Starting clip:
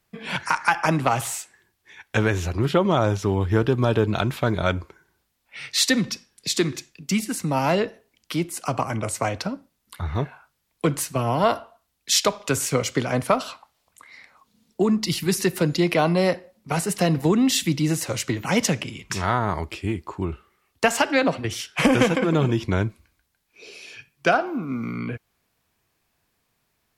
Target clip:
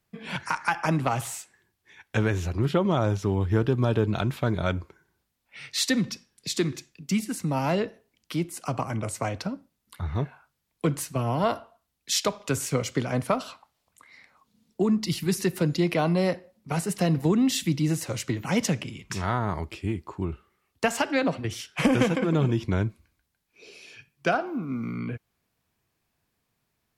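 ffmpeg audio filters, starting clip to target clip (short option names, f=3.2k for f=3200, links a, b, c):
-af "equalizer=f=140:t=o:w=2.6:g=4.5,volume=-6dB"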